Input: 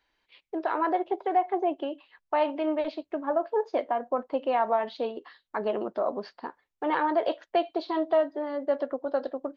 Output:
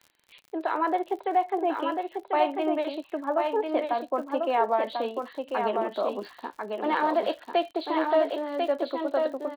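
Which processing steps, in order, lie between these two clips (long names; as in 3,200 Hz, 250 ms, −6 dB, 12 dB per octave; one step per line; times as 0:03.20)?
0:06.36–0:08.58: one scale factor per block 5 bits
Chebyshev band-pass filter 190–4,200 Hz, order 5
high-shelf EQ 2,400 Hz +6 dB
surface crackle 47 per second −40 dBFS
single-tap delay 1,044 ms −4.5 dB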